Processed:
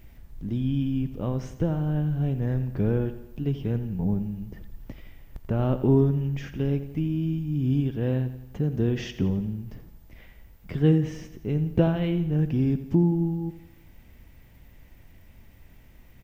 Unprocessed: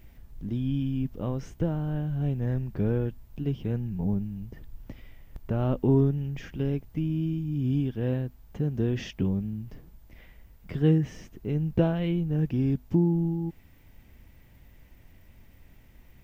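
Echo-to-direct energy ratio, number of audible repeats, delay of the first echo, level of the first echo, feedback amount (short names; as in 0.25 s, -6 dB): -11.5 dB, 4, 86 ms, -13.0 dB, 52%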